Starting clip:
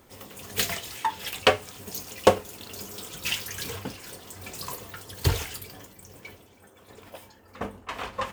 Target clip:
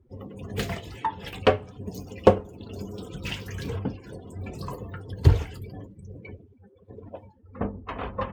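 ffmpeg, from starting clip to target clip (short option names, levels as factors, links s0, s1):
-filter_complex "[0:a]afftdn=nr=25:nf=-44,lowpass=f=2000:p=1,lowshelf=f=470:g=11.5,asplit=2[s0][s1];[s1]acompressor=threshold=0.02:ratio=6,volume=0.75[s2];[s0][s2]amix=inputs=2:normalize=0,volume=0.631"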